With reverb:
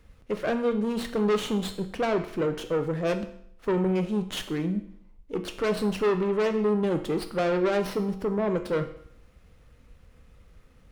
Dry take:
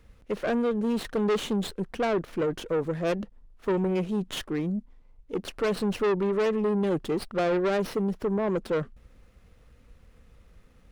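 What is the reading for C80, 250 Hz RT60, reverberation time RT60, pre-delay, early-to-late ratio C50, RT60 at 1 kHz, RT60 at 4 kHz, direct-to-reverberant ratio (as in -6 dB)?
14.5 dB, 0.65 s, 0.65 s, 8 ms, 11.5 dB, 0.65 s, 0.65 s, 6.5 dB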